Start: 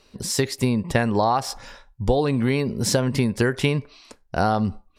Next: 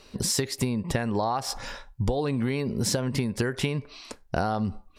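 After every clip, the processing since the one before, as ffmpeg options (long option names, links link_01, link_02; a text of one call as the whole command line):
ffmpeg -i in.wav -af "acompressor=threshold=-28dB:ratio=6,volume=4.5dB" out.wav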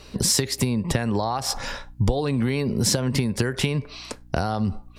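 ffmpeg -i in.wav -filter_complex "[0:a]acrossover=split=130|3000[link_01][link_02][link_03];[link_02]acompressor=threshold=-27dB:ratio=6[link_04];[link_01][link_04][link_03]amix=inputs=3:normalize=0,aeval=exprs='val(0)+0.002*(sin(2*PI*60*n/s)+sin(2*PI*2*60*n/s)/2+sin(2*PI*3*60*n/s)/3+sin(2*PI*4*60*n/s)/4+sin(2*PI*5*60*n/s)/5)':channel_layout=same,volume=6dB" out.wav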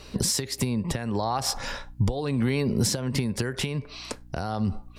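ffmpeg -i in.wav -af "alimiter=limit=-14dB:level=0:latency=1:release=452" out.wav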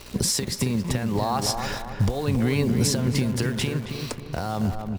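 ffmpeg -i in.wav -filter_complex "[0:a]acrusher=bits=8:dc=4:mix=0:aa=0.000001,asplit=2[link_01][link_02];[link_02]adelay=272,lowpass=frequency=1500:poles=1,volume=-5.5dB,asplit=2[link_03][link_04];[link_04]adelay=272,lowpass=frequency=1500:poles=1,volume=0.5,asplit=2[link_05][link_06];[link_06]adelay=272,lowpass=frequency=1500:poles=1,volume=0.5,asplit=2[link_07][link_08];[link_08]adelay=272,lowpass=frequency=1500:poles=1,volume=0.5,asplit=2[link_09][link_10];[link_10]adelay=272,lowpass=frequency=1500:poles=1,volume=0.5,asplit=2[link_11][link_12];[link_12]adelay=272,lowpass=frequency=1500:poles=1,volume=0.5[link_13];[link_01][link_03][link_05][link_07][link_09][link_11][link_13]amix=inputs=7:normalize=0,volume=1.5dB" out.wav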